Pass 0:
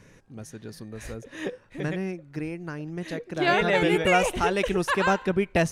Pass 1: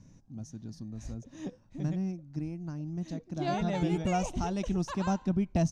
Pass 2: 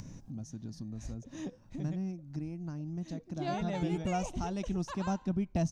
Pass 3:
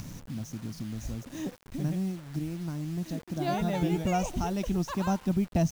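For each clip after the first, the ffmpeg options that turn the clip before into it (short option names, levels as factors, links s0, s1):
-af "firequalizer=gain_entry='entry(260,0);entry(440,-18);entry(670,-7);entry(1700,-21);entry(6000,-3);entry(10000,-22)':delay=0.05:min_phase=1"
-af "acompressor=mode=upward:threshold=0.0282:ratio=2.5,volume=0.668"
-af "acrusher=bits=8:mix=0:aa=0.000001,volume=1.78"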